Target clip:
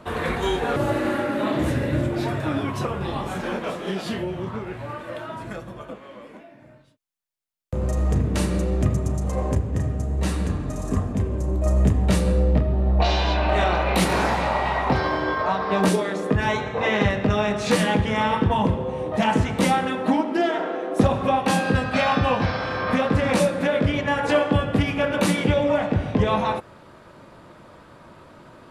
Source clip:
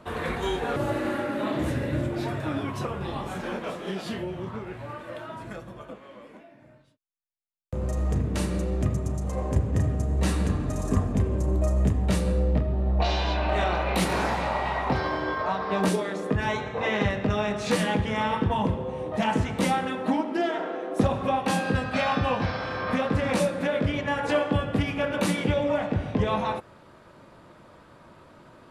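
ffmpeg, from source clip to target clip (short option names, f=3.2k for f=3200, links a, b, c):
-filter_complex "[0:a]asettb=1/sr,asplit=3[a][b][c];[a]atrim=end=9.554[d];[b]atrim=start=9.55:end=11.66,asetpts=PTS-STARTPTS,afade=t=in:d=0.004:c=qsin,afade=t=out:st=2.106:d=0.004:c=qsin,flanger=delay=9.9:depth=7.9:regen=-72:speed=1.2:shape=triangular[e];[c]atrim=start=11.656[f];[d][e]acrossfade=d=0.004:c1=hsin:c2=qsin[g];[g][f]acrossfade=d=0.004:c1=qsin:c2=hsin,volume=4.5dB"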